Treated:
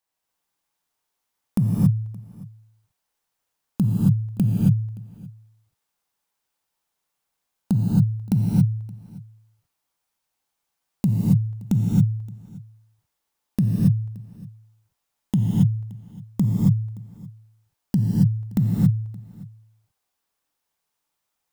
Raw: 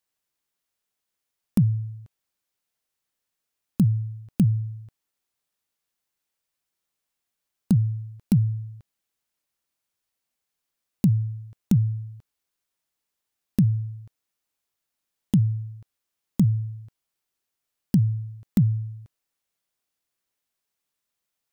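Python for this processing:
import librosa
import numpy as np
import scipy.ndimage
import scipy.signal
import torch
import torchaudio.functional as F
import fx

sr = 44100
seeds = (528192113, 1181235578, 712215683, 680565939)

p1 = fx.peak_eq(x, sr, hz=870.0, db=7.0, octaves=0.88)
p2 = p1 + fx.echo_single(p1, sr, ms=572, db=-22.0, dry=0)
p3 = fx.rev_gated(p2, sr, seeds[0], gate_ms=300, shape='rising', drr_db=-3.0)
y = p3 * librosa.db_to_amplitude(-2.0)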